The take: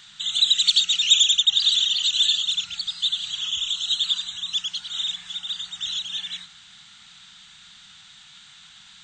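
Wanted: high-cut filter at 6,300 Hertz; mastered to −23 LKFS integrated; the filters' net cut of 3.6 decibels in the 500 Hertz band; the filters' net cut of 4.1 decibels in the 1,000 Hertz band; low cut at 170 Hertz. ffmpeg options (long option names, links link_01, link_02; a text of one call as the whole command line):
ffmpeg -i in.wav -af "highpass=170,lowpass=6300,equalizer=frequency=500:width_type=o:gain=-3,equalizer=frequency=1000:width_type=o:gain=-5.5,volume=-2dB" out.wav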